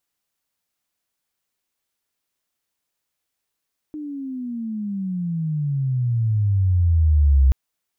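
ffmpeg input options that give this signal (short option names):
-f lavfi -i "aevalsrc='pow(10,(-10.5+18*(t/3.58-1))/20)*sin(2*PI*307*3.58/(-27*log(2)/12)*(exp(-27*log(2)/12*t/3.58)-1))':d=3.58:s=44100"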